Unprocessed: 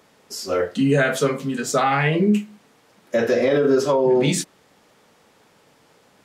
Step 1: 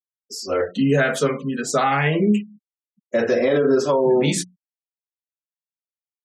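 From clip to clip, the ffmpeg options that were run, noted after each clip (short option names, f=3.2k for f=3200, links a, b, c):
-af "bandreject=f=60:t=h:w=6,bandreject=f=120:t=h:w=6,bandreject=f=180:t=h:w=6,afftfilt=real='re*gte(hypot(re,im),0.0158)':imag='im*gte(hypot(re,im),0.0158)':win_size=1024:overlap=0.75"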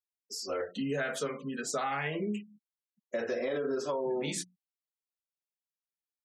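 -af "lowshelf=f=210:g=-9.5,acompressor=threshold=-28dB:ratio=2,volume=-6.5dB"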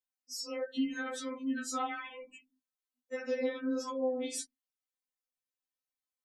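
-af "afftfilt=real='re*3.46*eq(mod(b,12),0)':imag='im*3.46*eq(mod(b,12),0)':win_size=2048:overlap=0.75"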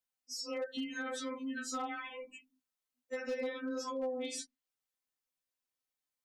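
-filter_complex "[0:a]acrossover=split=580|7000[a][b][c];[a]acompressor=threshold=-41dB:ratio=4[d];[b]acompressor=threshold=-40dB:ratio=4[e];[c]acompressor=threshold=-57dB:ratio=4[f];[d][e][f]amix=inputs=3:normalize=0,volume=32.5dB,asoftclip=hard,volume=-32.5dB,volume=1.5dB"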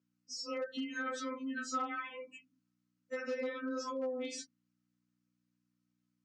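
-af "aeval=exprs='val(0)+0.000251*(sin(2*PI*60*n/s)+sin(2*PI*2*60*n/s)/2+sin(2*PI*3*60*n/s)/3+sin(2*PI*4*60*n/s)/4+sin(2*PI*5*60*n/s)/5)':c=same,highpass=f=160:w=0.5412,highpass=f=160:w=1.3066,equalizer=f=820:t=q:w=4:g=-7,equalizer=f=1.3k:t=q:w=4:g=6,equalizer=f=3.6k:t=q:w=4:g=-5,lowpass=f=6.9k:w=0.5412,lowpass=f=6.9k:w=1.3066"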